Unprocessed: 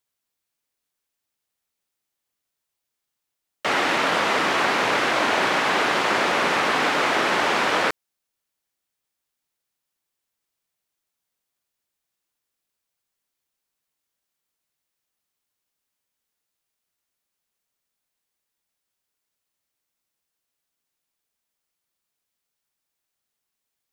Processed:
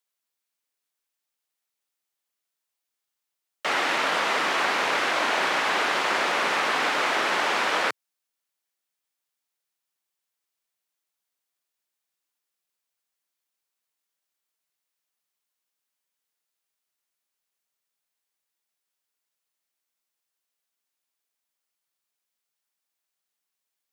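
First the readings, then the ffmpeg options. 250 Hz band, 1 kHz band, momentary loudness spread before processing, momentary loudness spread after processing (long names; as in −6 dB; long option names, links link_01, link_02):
−7.5 dB, −3.0 dB, 3 LU, 3 LU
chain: -af "highpass=frequency=110:width=0.5412,highpass=frequency=110:width=1.3066,lowshelf=frequency=330:gain=-10,volume=-2dB"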